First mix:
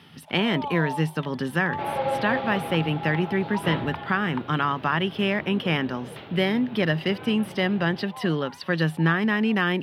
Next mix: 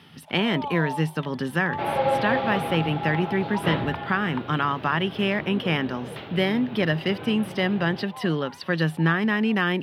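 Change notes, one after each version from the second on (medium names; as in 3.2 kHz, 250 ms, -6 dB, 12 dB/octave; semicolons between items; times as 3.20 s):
second sound +3.5 dB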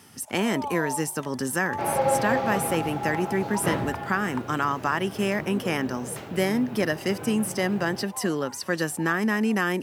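speech: add peaking EQ 160 Hz -11.5 dB 0.24 oct; master: add resonant high shelf 5 kHz +13 dB, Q 3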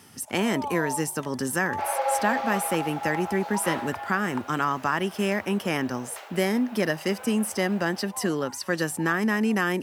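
second sound: add high-pass 600 Hz 24 dB/octave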